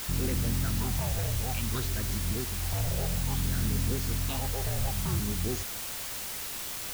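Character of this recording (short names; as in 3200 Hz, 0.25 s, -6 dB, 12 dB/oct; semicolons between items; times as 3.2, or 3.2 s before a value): phasing stages 6, 0.59 Hz, lowest notch 290–1000 Hz; a quantiser's noise floor 6-bit, dither triangular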